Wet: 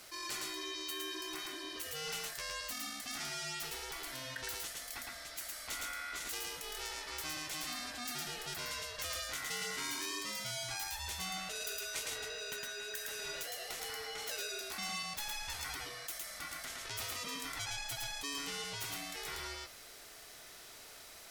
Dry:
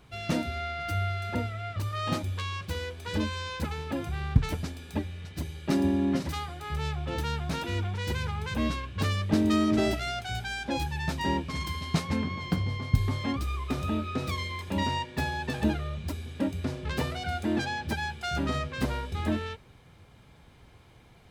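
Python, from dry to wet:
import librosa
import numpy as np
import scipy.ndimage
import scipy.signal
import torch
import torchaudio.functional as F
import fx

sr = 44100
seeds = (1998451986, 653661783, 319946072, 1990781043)

y = scipy.signal.sosfilt(scipy.signal.butter(2, 79.0, 'highpass', fs=sr, output='sos'), x)
y = scipy.signal.lfilter([1.0, -0.97], [1.0], y)
y = y * np.sin(2.0 * np.pi * 1700.0 * np.arange(len(y)) / sr)
y = y + 10.0 ** (-3.0 / 20.0) * np.pad(y, (int(111 * sr / 1000.0), 0))[:len(y)]
y = fx.env_flatten(y, sr, amount_pct=50)
y = F.gain(torch.from_numpy(y), 3.0).numpy()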